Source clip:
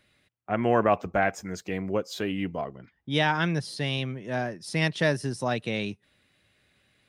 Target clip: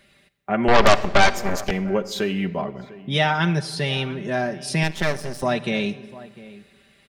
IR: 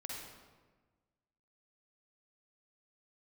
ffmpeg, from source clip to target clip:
-filter_complex "[0:a]aecho=1:1:5.1:0.64,asplit=2[link_01][link_02];[link_02]acompressor=threshold=-35dB:ratio=6,volume=1.5dB[link_03];[link_01][link_03]amix=inputs=2:normalize=0,asplit=2[link_04][link_05];[link_05]adelay=699.7,volume=-18dB,highshelf=frequency=4000:gain=-15.7[link_06];[link_04][link_06]amix=inputs=2:normalize=0,asettb=1/sr,asplit=3[link_07][link_08][link_09];[link_07]atrim=end=0.684[link_10];[link_08]atrim=start=0.68:end=1.71,asetpts=PTS-STARTPTS,afade=type=in:duration=0.004:curve=qsin,afade=type=out:start_time=1.026:duration=0.004:curve=qsin,aeval=exprs='0.473*(cos(1*acos(clip(val(0)/0.473,-1,1)))-cos(1*PI/2))+0.168*(cos(8*acos(clip(val(0)/0.473,-1,1)))-cos(8*PI/2))':channel_layout=same[link_11];[link_09]atrim=start=1.706[link_12];[link_10][link_11]acrossfade=duration=0.004:curve1=hsin:curve2=qsin[link_13];[link_13][link_12]acrossfade=duration=0.004:curve1=qsin:curve2=hsin,asplit=2[link_14][link_15];[1:a]atrim=start_sample=2205[link_16];[link_15][link_16]afir=irnorm=-1:irlink=0,volume=-11dB[link_17];[link_14][link_17]amix=inputs=2:normalize=0,asettb=1/sr,asplit=3[link_18][link_19][link_20];[link_18]atrim=end=4.834[link_21];[link_19]atrim=start=4.83:end=5.43,asetpts=PTS-STARTPTS,afade=type=in:duration=0.004:curve=qsin,afade=type=out:start_time=0.596:duration=0.004:curve=qsin,aeval=exprs='max(val(0),0)':channel_layout=same[link_22];[link_20]atrim=start=5.426[link_23];[link_21][link_22]acrossfade=duration=0.004:curve1=hsin:curve2=qsin[link_24];[link_24][link_23]acrossfade=duration=0.004:curve1=qsin:curve2=hsin"

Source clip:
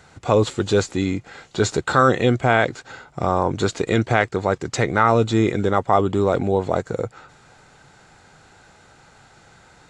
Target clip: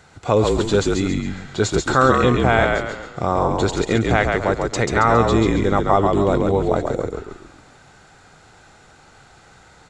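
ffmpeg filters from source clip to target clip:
ffmpeg -i in.wav -filter_complex "[0:a]asplit=6[link_01][link_02][link_03][link_04][link_05][link_06];[link_02]adelay=137,afreqshift=-47,volume=-3.5dB[link_07];[link_03]adelay=274,afreqshift=-94,volume=-11dB[link_08];[link_04]adelay=411,afreqshift=-141,volume=-18.6dB[link_09];[link_05]adelay=548,afreqshift=-188,volume=-26.1dB[link_10];[link_06]adelay=685,afreqshift=-235,volume=-33.6dB[link_11];[link_01][link_07][link_08][link_09][link_10][link_11]amix=inputs=6:normalize=0" out.wav

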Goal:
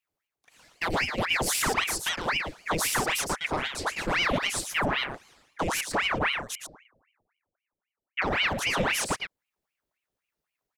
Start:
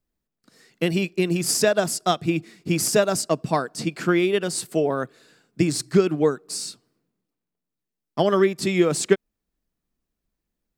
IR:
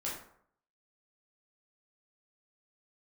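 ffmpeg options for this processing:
-filter_complex "[0:a]highpass=frequency=75:width=0.5412,highpass=frequency=75:width=1.3066,alimiter=limit=-12.5dB:level=0:latency=1:release=116,asoftclip=type=tanh:threshold=-17.5dB,asettb=1/sr,asplit=3[link_01][link_02][link_03];[link_01]atrim=end=6.554[link_04];[link_02]atrim=start=6.55:end=8.22,asetpts=PTS-STARTPTS,afade=type=in:duration=0.004:curve=qsin,afade=type=out:start_time=1.666:duration=0.004:curve=qsin,lowpass=frequency=390:width_type=q:width=3.6[link_05];[link_03]atrim=start=8.216[link_06];[link_04][link_05]acrossfade=duration=0.004:curve1=hsin:curve2=qsin[link_07];[link_07][link_06]acrossfade=duration=0.004:curve1=qsin:curve2=hsin,aecho=1:1:113:0.501,aeval=exprs='val(0)*sin(2*PI*1400*n/s+1400*0.9/3.8*sin(2*PI*3.8*n/s))':channel_layout=same"

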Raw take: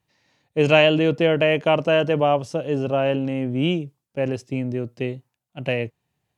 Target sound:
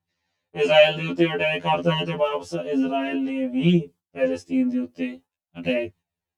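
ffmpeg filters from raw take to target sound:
ffmpeg -i in.wav -af "aphaser=in_gain=1:out_gain=1:delay=4.3:decay=0.5:speed=0.52:type=triangular,agate=range=-11dB:threshold=-41dB:ratio=16:detection=peak,afftfilt=real='re*2*eq(mod(b,4),0)':imag='im*2*eq(mod(b,4),0)':win_size=2048:overlap=0.75,volume=1dB" out.wav

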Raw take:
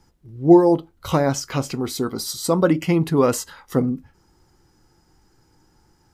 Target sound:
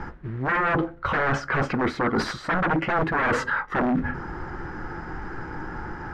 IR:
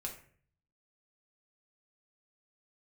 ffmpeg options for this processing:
-filter_complex "[0:a]alimiter=limit=-9dB:level=0:latency=1:release=220,asplit=2[link_01][link_02];[1:a]atrim=start_sample=2205[link_03];[link_02][link_03]afir=irnorm=-1:irlink=0,volume=-18dB[link_04];[link_01][link_04]amix=inputs=2:normalize=0,acrusher=bits=5:mode=log:mix=0:aa=0.000001,aeval=exprs='0.422*sin(PI/2*5.01*val(0)/0.422)':channel_layout=same,lowpass=frequency=1600:width_type=q:width=2.7,areverse,acompressor=threshold=-29dB:ratio=6,areverse,equalizer=frequency=99:width=1.3:gain=-3.5,volume=6dB"

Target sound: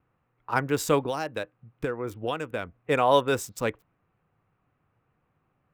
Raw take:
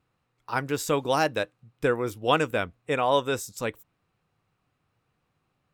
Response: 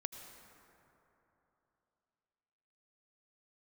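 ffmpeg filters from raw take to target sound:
-filter_complex "[0:a]acrossover=split=550|2600[link_01][link_02][link_03];[link_03]aeval=exprs='sgn(val(0))*max(abs(val(0))-0.00531,0)':channel_layout=same[link_04];[link_01][link_02][link_04]amix=inputs=3:normalize=0,asettb=1/sr,asplit=3[link_05][link_06][link_07];[link_05]atrim=end=1.014[link_08];[link_06]atrim=start=1.01:end=2.75,asetpts=PTS-STARTPTS,afade=type=in:duration=0.004:curve=qsin,afade=type=out:start_time=1.736:duration=0.004:curve=qsin,acompressor=threshold=-30dB:ratio=5[link_09];[link_07]atrim=start=2.746[link_10];[link_08][link_09]acrossfade=duration=0.004:curve1=hsin:curve2=qsin[link_11];[link_11][link_10]acrossfade=duration=0.004:curve1=qsin:curve2=hsin,volume=2.5dB"

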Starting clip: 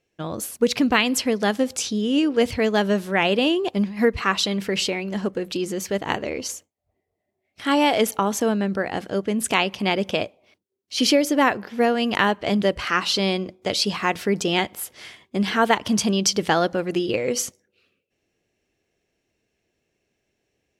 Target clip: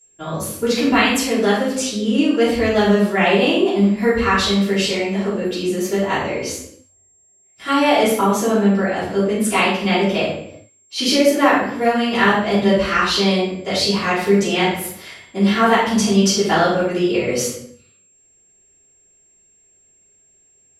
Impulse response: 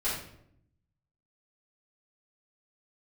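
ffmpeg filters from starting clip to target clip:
-filter_complex "[0:a]aeval=exprs='val(0)+0.00316*sin(2*PI*7500*n/s)':channel_layout=same[link_01];[1:a]atrim=start_sample=2205,afade=type=out:start_time=0.44:duration=0.01,atrim=end_sample=19845,asetrate=39690,aresample=44100[link_02];[link_01][link_02]afir=irnorm=-1:irlink=0,volume=-3.5dB"

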